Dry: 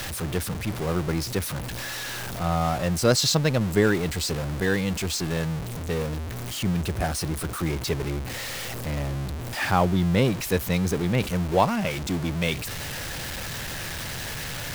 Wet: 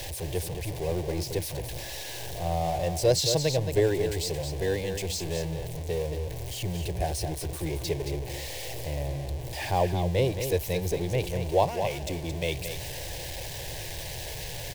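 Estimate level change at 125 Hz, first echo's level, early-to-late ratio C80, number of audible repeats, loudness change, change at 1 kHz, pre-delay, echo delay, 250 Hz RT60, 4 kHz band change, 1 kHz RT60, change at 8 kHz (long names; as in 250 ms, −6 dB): −4.0 dB, −8.0 dB, no reverb audible, 1, −3.5 dB, −4.0 dB, no reverb audible, 222 ms, no reverb audible, −4.0 dB, no reverb audible, −3.5 dB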